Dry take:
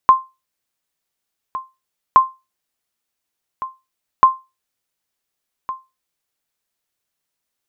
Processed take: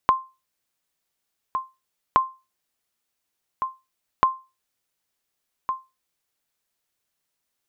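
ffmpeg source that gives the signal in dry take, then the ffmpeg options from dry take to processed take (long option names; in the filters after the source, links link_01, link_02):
-f lavfi -i "aevalsrc='0.891*(sin(2*PI*1050*mod(t,2.07))*exp(-6.91*mod(t,2.07)/0.24)+0.15*sin(2*PI*1050*max(mod(t,2.07)-1.46,0))*exp(-6.91*max(mod(t,2.07)-1.46,0)/0.24))':duration=6.21:sample_rate=44100"
-af "acompressor=threshold=-19dB:ratio=3"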